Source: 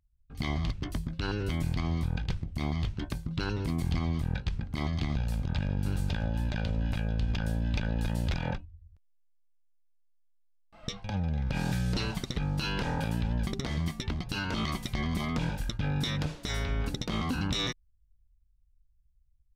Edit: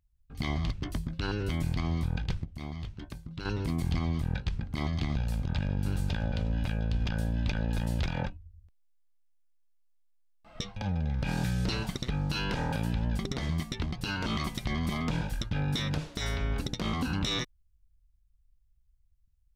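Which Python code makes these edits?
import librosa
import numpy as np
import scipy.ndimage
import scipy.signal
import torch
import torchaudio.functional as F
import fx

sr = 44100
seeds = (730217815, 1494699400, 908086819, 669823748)

y = fx.edit(x, sr, fx.clip_gain(start_s=2.45, length_s=1.0, db=-7.5),
    fx.cut(start_s=6.32, length_s=0.28), tone=tone)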